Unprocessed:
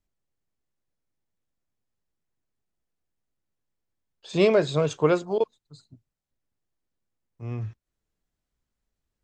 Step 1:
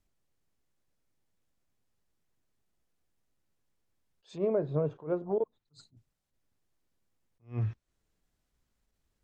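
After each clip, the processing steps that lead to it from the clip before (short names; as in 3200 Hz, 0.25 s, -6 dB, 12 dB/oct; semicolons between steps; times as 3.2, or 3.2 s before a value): treble ducked by the level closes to 780 Hz, closed at -22 dBFS; compressor 5:1, threshold -30 dBFS, peak gain reduction 13 dB; attack slew limiter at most 220 dB/s; gain +4 dB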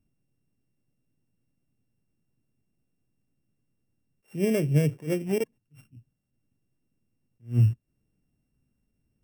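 sample sorter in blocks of 16 samples; graphic EQ 125/250/1000/4000 Hz +11/+9/-5/-10 dB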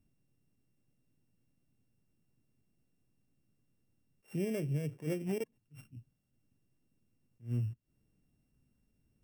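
compressor 20:1, threshold -31 dBFS, peak gain reduction 16 dB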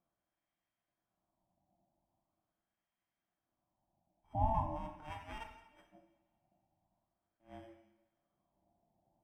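wah 0.42 Hz 350–1500 Hz, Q 2.1; ring modulator 450 Hz; two-slope reverb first 0.9 s, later 2.8 s, from -25 dB, DRR 2.5 dB; gain +8 dB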